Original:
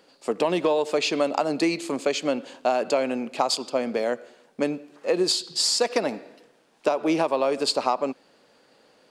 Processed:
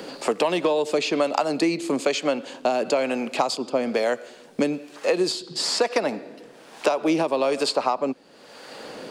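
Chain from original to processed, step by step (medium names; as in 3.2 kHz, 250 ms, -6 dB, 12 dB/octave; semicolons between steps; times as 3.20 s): harmonic tremolo 1.1 Hz, depth 50%, crossover 490 Hz; three bands compressed up and down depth 70%; trim +3.5 dB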